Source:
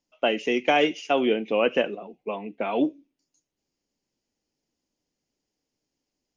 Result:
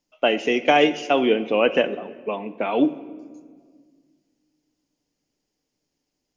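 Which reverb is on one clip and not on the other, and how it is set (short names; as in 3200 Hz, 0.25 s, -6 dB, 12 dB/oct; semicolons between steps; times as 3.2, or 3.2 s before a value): shoebox room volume 2300 m³, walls mixed, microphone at 0.44 m; gain +3.5 dB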